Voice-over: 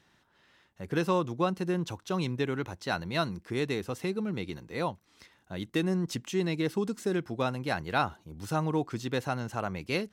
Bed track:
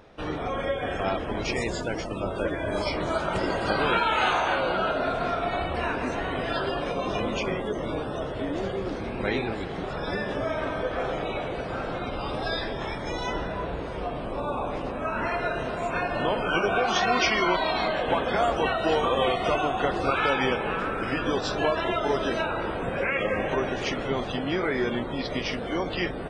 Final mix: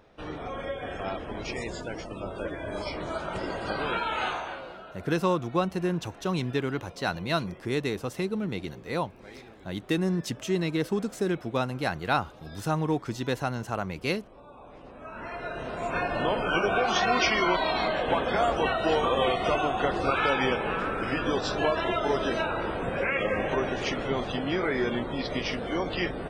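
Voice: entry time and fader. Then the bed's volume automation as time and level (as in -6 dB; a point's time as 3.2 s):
4.15 s, +2.0 dB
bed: 4.25 s -6 dB
4.85 s -20 dB
14.53 s -20 dB
15.96 s -1 dB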